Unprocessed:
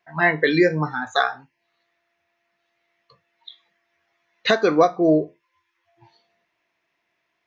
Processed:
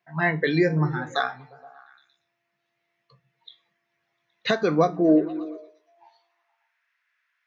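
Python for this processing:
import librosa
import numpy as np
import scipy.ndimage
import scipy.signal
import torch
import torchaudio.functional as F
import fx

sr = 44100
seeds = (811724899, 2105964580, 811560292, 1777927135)

y = fx.filter_sweep_highpass(x, sr, from_hz=130.0, to_hz=1500.0, start_s=4.62, end_s=6.69, q=3.7)
y = fx.echo_stepped(y, sr, ms=117, hz=160.0, octaves=0.7, feedback_pct=70, wet_db=-10.5)
y = y * librosa.db_to_amplitude(-5.5)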